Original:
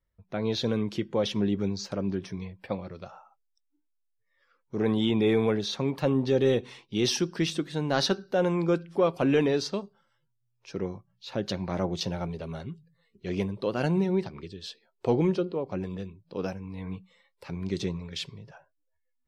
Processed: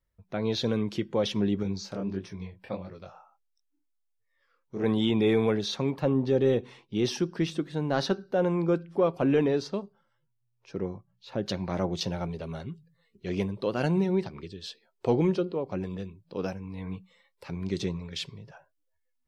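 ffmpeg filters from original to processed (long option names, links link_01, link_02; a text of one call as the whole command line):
ffmpeg -i in.wav -filter_complex "[0:a]asettb=1/sr,asplit=3[link_01][link_02][link_03];[link_01]atrim=end=1.634[link_04];[link_02]atrim=start=1.63:end=4.84,asetpts=PTS-STARTPTS,afade=type=in:duration=0.004:curve=qsin,afade=type=out:start_time=3.206:duration=0.004:curve=qsin,flanger=delay=19:depth=7.2:speed=1.5[link_05];[link_03]atrim=start=4.836[link_06];[link_04][link_05]acrossfade=duration=0.004:curve1=hsin:curve2=qsin[link_07];[link_07][link_06]acrossfade=duration=0.004:curve1=qsin:curve2=hsin,asettb=1/sr,asplit=3[link_08][link_09][link_10];[link_08]atrim=end=5.944[link_11];[link_09]atrim=start=5.94:end=11.46,asetpts=PTS-STARTPTS,afade=type=in:duration=0.004:curve=qsin,afade=type=out:start_time=5.516:duration=0.004:curve=qsin,highshelf=frequency=2100:gain=-8.5[link_12];[link_10]atrim=start=11.456[link_13];[link_11][link_12]acrossfade=duration=0.004:curve1=hsin:curve2=qsin[link_14];[link_14][link_13]acrossfade=duration=0.004:curve1=qsin:curve2=hsin" out.wav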